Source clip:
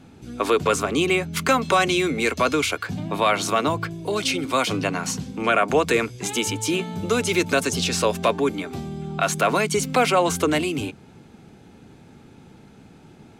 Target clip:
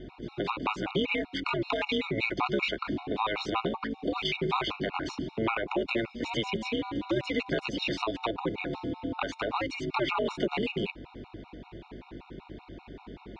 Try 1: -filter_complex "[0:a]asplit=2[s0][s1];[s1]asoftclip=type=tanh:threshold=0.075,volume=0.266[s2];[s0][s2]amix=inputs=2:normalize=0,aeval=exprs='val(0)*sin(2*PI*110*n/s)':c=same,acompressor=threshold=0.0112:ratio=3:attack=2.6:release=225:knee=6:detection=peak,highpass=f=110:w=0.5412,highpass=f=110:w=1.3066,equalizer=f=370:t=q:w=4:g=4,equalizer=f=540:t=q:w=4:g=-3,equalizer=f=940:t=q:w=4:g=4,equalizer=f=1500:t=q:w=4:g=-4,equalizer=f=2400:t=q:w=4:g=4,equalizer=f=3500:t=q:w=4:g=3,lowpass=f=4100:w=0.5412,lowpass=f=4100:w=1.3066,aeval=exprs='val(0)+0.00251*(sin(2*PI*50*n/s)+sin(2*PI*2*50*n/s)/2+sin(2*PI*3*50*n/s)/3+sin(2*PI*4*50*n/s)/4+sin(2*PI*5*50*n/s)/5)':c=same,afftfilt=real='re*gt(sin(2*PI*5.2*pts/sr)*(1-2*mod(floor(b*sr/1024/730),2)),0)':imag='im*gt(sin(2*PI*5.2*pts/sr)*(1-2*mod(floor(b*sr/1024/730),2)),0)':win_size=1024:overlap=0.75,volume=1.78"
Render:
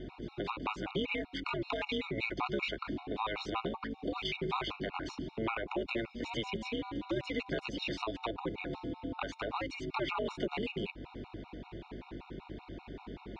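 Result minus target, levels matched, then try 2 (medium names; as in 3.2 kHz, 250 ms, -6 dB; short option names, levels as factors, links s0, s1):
compression: peak gain reduction +6 dB
-filter_complex "[0:a]asplit=2[s0][s1];[s1]asoftclip=type=tanh:threshold=0.075,volume=0.266[s2];[s0][s2]amix=inputs=2:normalize=0,aeval=exprs='val(0)*sin(2*PI*110*n/s)':c=same,acompressor=threshold=0.0316:ratio=3:attack=2.6:release=225:knee=6:detection=peak,highpass=f=110:w=0.5412,highpass=f=110:w=1.3066,equalizer=f=370:t=q:w=4:g=4,equalizer=f=540:t=q:w=4:g=-3,equalizer=f=940:t=q:w=4:g=4,equalizer=f=1500:t=q:w=4:g=-4,equalizer=f=2400:t=q:w=4:g=4,equalizer=f=3500:t=q:w=4:g=3,lowpass=f=4100:w=0.5412,lowpass=f=4100:w=1.3066,aeval=exprs='val(0)+0.00251*(sin(2*PI*50*n/s)+sin(2*PI*2*50*n/s)/2+sin(2*PI*3*50*n/s)/3+sin(2*PI*4*50*n/s)/4+sin(2*PI*5*50*n/s)/5)':c=same,afftfilt=real='re*gt(sin(2*PI*5.2*pts/sr)*(1-2*mod(floor(b*sr/1024/730),2)),0)':imag='im*gt(sin(2*PI*5.2*pts/sr)*(1-2*mod(floor(b*sr/1024/730),2)),0)':win_size=1024:overlap=0.75,volume=1.78"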